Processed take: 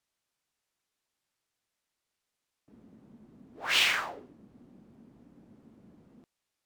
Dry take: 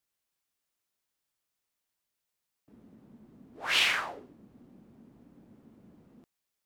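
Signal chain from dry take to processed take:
dynamic equaliser 8,200 Hz, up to +5 dB, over −45 dBFS, Q 0.8
linearly interpolated sample-rate reduction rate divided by 2×

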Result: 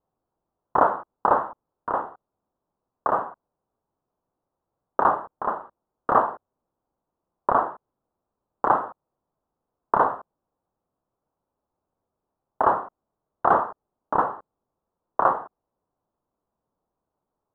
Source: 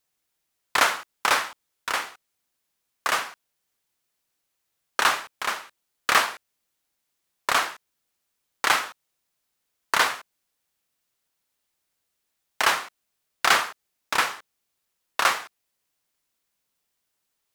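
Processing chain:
inverse Chebyshev low-pass filter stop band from 2,100 Hz, stop band 40 dB
level +8 dB

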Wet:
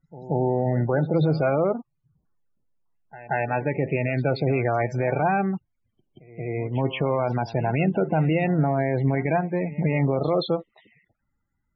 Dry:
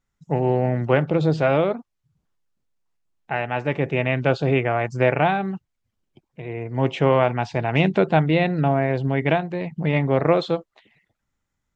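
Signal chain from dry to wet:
spectral peaks only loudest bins 32
brickwall limiter −15 dBFS, peak gain reduction 10 dB
backwards echo 179 ms −17.5 dB
level +2 dB

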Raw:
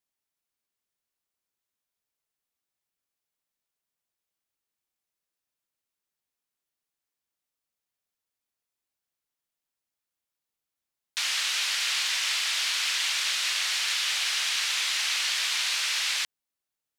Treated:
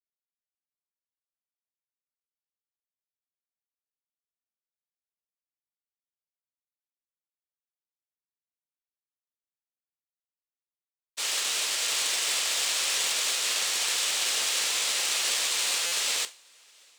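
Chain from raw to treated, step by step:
phase distortion by the signal itself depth 0.068 ms
high-pass filter 99 Hz 24 dB per octave
parametric band 10,000 Hz −8 dB 1.6 octaves
in parallel at +1 dB: brickwall limiter −27.5 dBFS, peak gain reduction 8.5 dB
on the sum: graphic EQ with 10 bands 125 Hz −11 dB, 500 Hz +11 dB, 2,000 Hz −4 dB, 8,000 Hz +12 dB
on a send: feedback delay with all-pass diffusion 782 ms, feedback 42%, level −10.5 dB
on the sum: downward expander −20 dBFS
notch filter 1,500 Hz, Q 25
buffer that repeats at 0:15.86, samples 256, times 9

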